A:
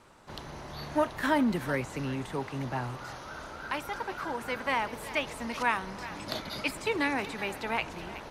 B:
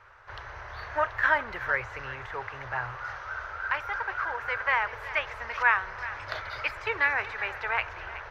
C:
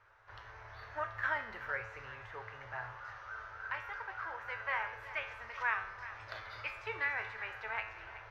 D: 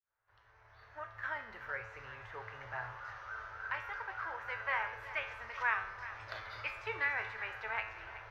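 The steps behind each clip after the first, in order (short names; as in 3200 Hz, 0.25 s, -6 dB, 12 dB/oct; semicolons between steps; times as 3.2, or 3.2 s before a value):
EQ curve 110 Hz 0 dB, 150 Hz -21 dB, 250 Hz -28 dB, 440 Hz -6 dB, 820 Hz -3 dB, 1600 Hz +8 dB, 3800 Hz -9 dB, 6000 Hz -10 dB, 8700 Hz -28 dB, 13000 Hz -18 dB; gain +2.5 dB
resonator 110 Hz, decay 0.68 s, harmonics all, mix 80%
opening faded in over 2.63 s; gain +1 dB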